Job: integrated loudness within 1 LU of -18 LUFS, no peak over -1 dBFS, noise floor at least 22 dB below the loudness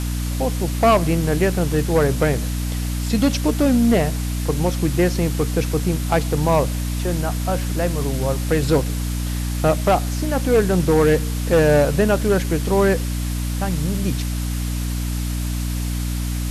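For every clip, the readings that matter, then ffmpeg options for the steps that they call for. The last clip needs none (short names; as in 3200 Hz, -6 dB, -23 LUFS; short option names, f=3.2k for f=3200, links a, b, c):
hum 60 Hz; harmonics up to 300 Hz; hum level -21 dBFS; noise floor -24 dBFS; noise floor target -43 dBFS; loudness -20.5 LUFS; peak -6.5 dBFS; loudness target -18.0 LUFS
-> -af "bandreject=f=60:t=h:w=4,bandreject=f=120:t=h:w=4,bandreject=f=180:t=h:w=4,bandreject=f=240:t=h:w=4,bandreject=f=300:t=h:w=4"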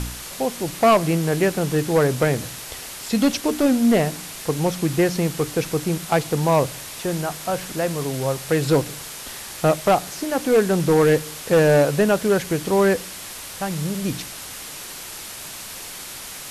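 hum none; noise floor -36 dBFS; noise floor target -43 dBFS
-> -af "afftdn=nr=7:nf=-36"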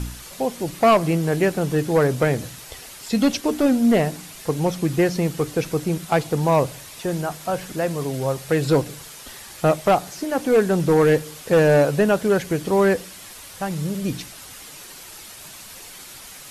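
noise floor -41 dBFS; noise floor target -43 dBFS
-> -af "afftdn=nr=6:nf=-41"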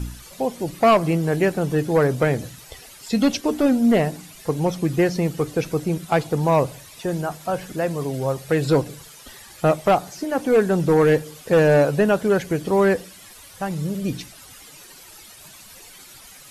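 noise floor -45 dBFS; loudness -21.0 LUFS; peak -8.5 dBFS; loudness target -18.0 LUFS
-> -af "volume=3dB"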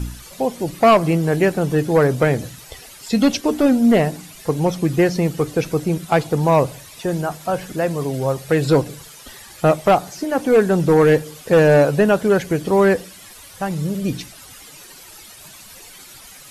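loudness -18.0 LUFS; peak -5.5 dBFS; noise floor -42 dBFS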